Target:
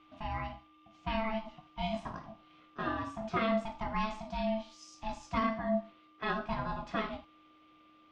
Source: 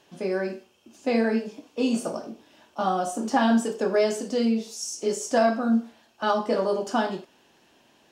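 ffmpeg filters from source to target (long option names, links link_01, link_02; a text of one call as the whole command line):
ffmpeg -i in.wav -af "asubboost=boost=5:cutoff=140,aeval=exprs='val(0)+0.00316*sin(2*PI*750*n/s)':channel_layout=same,aeval=exprs='val(0)*sin(2*PI*440*n/s)':channel_layout=same,lowpass=frequency=3000:width_type=q:width=2,volume=-7.5dB" out.wav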